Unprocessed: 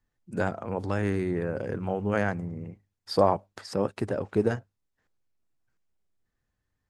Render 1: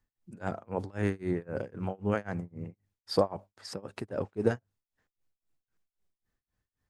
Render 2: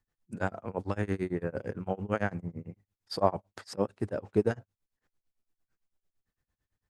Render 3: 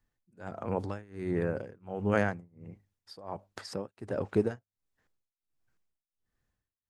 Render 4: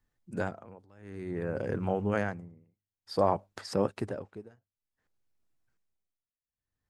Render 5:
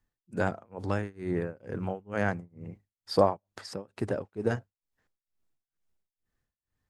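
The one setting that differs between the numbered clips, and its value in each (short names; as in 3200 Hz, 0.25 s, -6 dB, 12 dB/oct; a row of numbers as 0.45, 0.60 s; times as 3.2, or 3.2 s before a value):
tremolo, rate: 3.8, 8.9, 1.4, 0.55, 2.2 Hz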